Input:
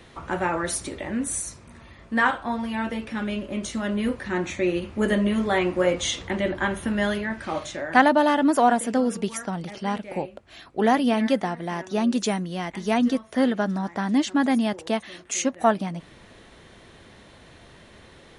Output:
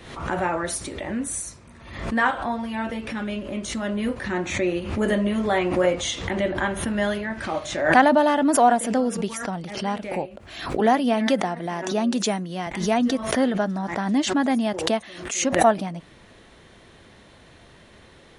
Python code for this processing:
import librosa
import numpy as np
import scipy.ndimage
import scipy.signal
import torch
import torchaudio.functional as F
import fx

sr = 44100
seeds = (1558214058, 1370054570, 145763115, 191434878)

y = fx.highpass(x, sr, hz=130.0, slope=24, at=(10.8, 12.67))
y = fx.dynamic_eq(y, sr, hz=670.0, q=2.4, threshold_db=-37.0, ratio=4.0, max_db=4)
y = fx.pre_swell(y, sr, db_per_s=69.0)
y = y * librosa.db_to_amplitude(-1.0)